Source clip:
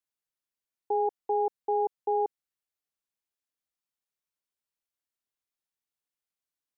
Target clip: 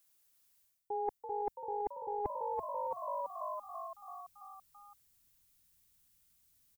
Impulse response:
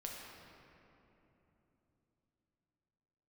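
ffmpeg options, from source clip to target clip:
-filter_complex "[0:a]asplit=9[a][b][c][d][e][f][g][h][i];[b]adelay=334,afreqshift=50,volume=-9dB[j];[c]adelay=668,afreqshift=100,volume=-13.3dB[k];[d]adelay=1002,afreqshift=150,volume=-17.6dB[l];[e]adelay=1336,afreqshift=200,volume=-21.9dB[m];[f]adelay=1670,afreqshift=250,volume=-26.2dB[n];[g]adelay=2004,afreqshift=300,volume=-30.5dB[o];[h]adelay=2338,afreqshift=350,volume=-34.8dB[p];[i]adelay=2672,afreqshift=400,volume=-39.1dB[q];[a][j][k][l][m][n][o][p][q]amix=inputs=9:normalize=0,areverse,acompressor=threshold=-41dB:ratio=20,areverse,asubboost=boost=11.5:cutoff=150,crystalizer=i=2:c=0,volume=9.5dB"

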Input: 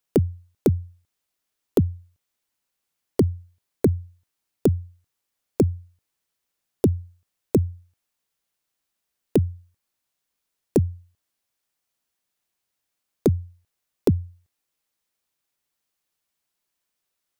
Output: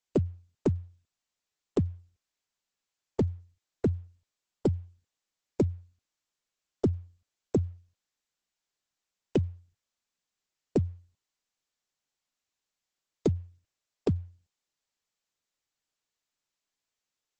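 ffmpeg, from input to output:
-filter_complex "[0:a]asplit=3[a][b][c];[a]afade=t=out:st=0.75:d=0.02[d];[b]adynamicequalizer=threshold=0.00141:dfrequency=6100:dqfactor=1.2:tfrequency=6100:tqfactor=1.2:attack=5:release=100:ratio=0.375:range=3:mode=cutabove:tftype=bell,afade=t=in:st=0.75:d=0.02,afade=t=out:st=1.88:d=0.02[e];[c]afade=t=in:st=1.88:d=0.02[f];[d][e][f]amix=inputs=3:normalize=0,volume=-7dB" -ar 48000 -c:a libopus -b:a 10k

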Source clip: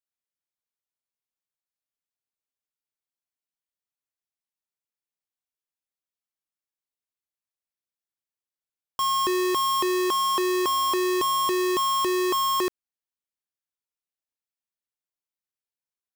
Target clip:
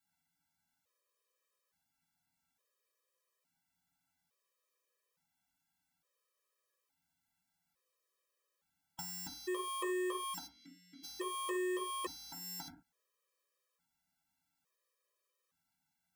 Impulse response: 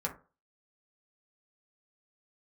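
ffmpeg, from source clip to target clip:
-filter_complex "[0:a]aeval=exprs='(mod(53.1*val(0)+1,2)-1)/53.1':c=same,asplit=3[a][b][c];[a]afade=t=out:st=10.46:d=0.02[d];[b]asplit=3[e][f][g];[e]bandpass=f=270:t=q:w=8,volume=0dB[h];[f]bandpass=f=2.29k:t=q:w=8,volume=-6dB[i];[g]bandpass=f=3.01k:t=q:w=8,volume=-9dB[j];[h][i][j]amix=inputs=3:normalize=0,afade=t=in:st=10.46:d=0.02,afade=t=out:st=11.03:d=0.02[k];[c]afade=t=in:st=11.03:d=0.02[l];[d][k][l]amix=inputs=3:normalize=0[m];[1:a]atrim=start_sample=2205,afade=t=out:st=0.19:d=0.01,atrim=end_sample=8820[n];[m][n]afir=irnorm=-1:irlink=0,acompressor=threshold=-46dB:ratio=6,afftfilt=real='re*gt(sin(2*PI*0.58*pts/sr)*(1-2*mod(floor(b*sr/1024/330),2)),0)':imag='im*gt(sin(2*PI*0.58*pts/sr)*(1-2*mod(floor(b*sr/1024/330),2)),0)':win_size=1024:overlap=0.75,volume=11.5dB"

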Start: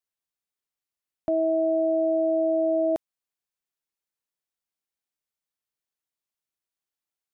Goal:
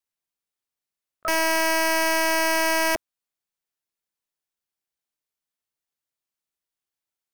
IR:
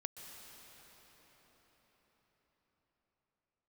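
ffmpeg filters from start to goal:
-filter_complex "[0:a]asplit=2[a][b];[b]asetrate=88200,aresample=44100,atempo=0.5,volume=-3dB[c];[a][c]amix=inputs=2:normalize=0,aeval=exprs='(mod(6.31*val(0)+1,2)-1)/6.31':c=same"

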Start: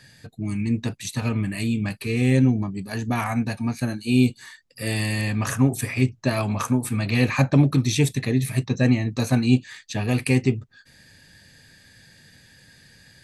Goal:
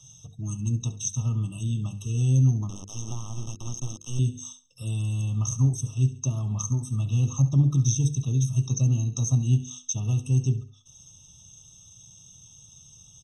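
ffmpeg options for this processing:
-filter_complex "[0:a]equalizer=f=125:t=o:w=1:g=4,equalizer=f=250:t=o:w=1:g=-10,equalizer=f=500:t=o:w=1:g=-6,equalizer=f=2k:t=o:w=1:g=-10,asplit=2[a][b];[b]aecho=0:1:68|136|204:0.158|0.046|0.0133[c];[a][c]amix=inputs=2:normalize=0,asettb=1/sr,asplit=3[d][e][f];[d]atrim=end=2.694[g];[e]atrim=start=2.69:end=4.19,asetpts=PTS-STARTPTS,afade=t=in:d=0.004:c=qsin,afade=t=out:st=1.496:d=0.004:c=qsin,acrusher=bits=3:dc=4:mix=0:aa=0.000001[h];[f]atrim=start=4.186[i];[g][h]acrossfade=d=0.004:c1=hsin:c2=qsin[j];[j][i]acrossfade=d=0.004:c1=qsin:c2=hsin,bandreject=f=50:t=h:w=6,bandreject=f=100:t=h:w=6,bandreject=f=150:t=h:w=6,bandreject=f=200:t=h:w=6,bandreject=f=250:t=h:w=6,bandreject=f=300:t=h:w=6,bandreject=f=350:t=h:w=6,bandreject=f=400:t=h:w=6,bandreject=f=450:t=h:w=6,bandreject=f=500:t=h:w=6,acrossover=split=390[k][l];[l]acompressor=threshold=-41dB:ratio=6[m];[k][m]amix=inputs=2:normalize=0,lowpass=f=6.5k:t=q:w=12,equalizer=f=630:w=1:g=-5.5,afftfilt=real='re*eq(mod(floor(b*sr/1024/1300),2),0)':imag='im*eq(mod(floor(b*sr/1024/1300),2),0)':win_size=1024:overlap=0.75"

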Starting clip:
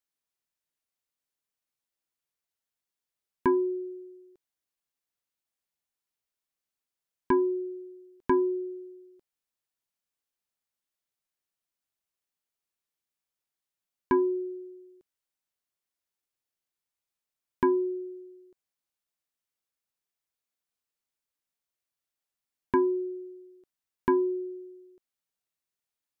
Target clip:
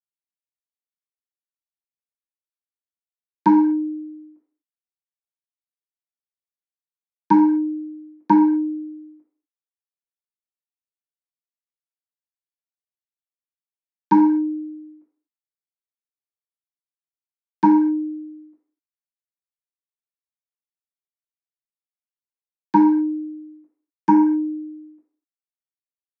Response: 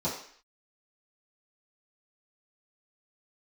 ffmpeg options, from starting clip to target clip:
-filter_complex "[0:a]highpass=f=240:t=q:w=0.5412,highpass=f=240:t=q:w=1.307,lowpass=f=2.2k:t=q:w=0.5176,lowpass=f=2.2k:t=q:w=0.7071,lowpass=f=2.2k:t=q:w=1.932,afreqshift=-59,agate=range=-33dB:threshold=-53dB:ratio=3:detection=peak,crystalizer=i=4:c=0,aemphasis=mode=production:type=bsi[a];[1:a]atrim=start_sample=2205,afade=t=out:st=0.31:d=0.01,atrim=end_sample=14112[b];[a][b]afir=irnorm=-1:irlink=0"

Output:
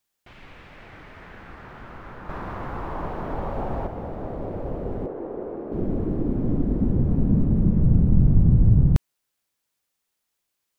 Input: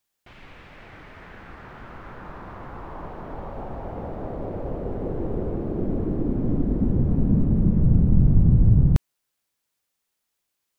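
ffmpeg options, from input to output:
-filter_complex "[0:a]asettb=1/sr,asplit=3[a][b][c];[a]atrim=end=2.294[d];[b]atrim=start=2.29:end=3.87,asetpts=PTS-STARTPTS,afade=t=in:d=0.004:c=qsin,afade=t=out:st=1.576:d=0.004:c=qsin,acontrast=48[e];[c]atrim=start=3.866[f];[d][e]acrossfade=d=0.004:c1=hsin:c2=qsin[g];[g][f]acrossfade=d=0.004:c1=qsin:c2=hsin,asettb=1/sr,asplit=3[h][i][j];[h]atrim=end=5.064[k];[i]atrim=start=5.06:end=5.72,asetpts=PTS-STARTPTS,afade=t=in:d=0.004:c=qsin,afade=t=out:st=0.656:d=0.004:c=qsin,acrossover=split=280 2100:gain=0.0891 1 0.251[l][m][n];[l][m][n]amix=inputs=3:normalize=0[o];[j]atrim=start=5.716[p];[k][o]acrossfade=d=0.004:c1=hsin:c2=qsin[q];[q][p]acrossfade=d=0.004:c1=qsin:c2=hsin"

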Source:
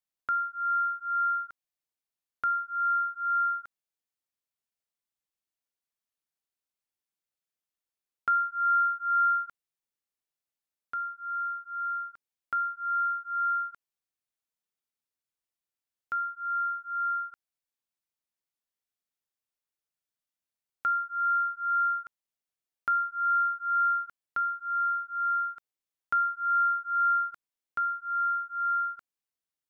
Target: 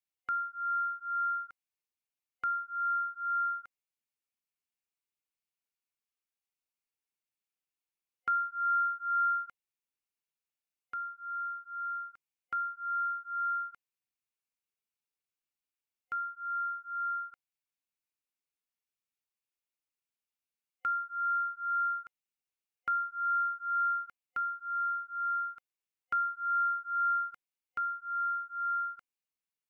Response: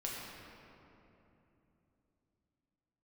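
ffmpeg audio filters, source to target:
-af "superequalizer=8b=0.631:12b=1.78,volume=-4.5dB"

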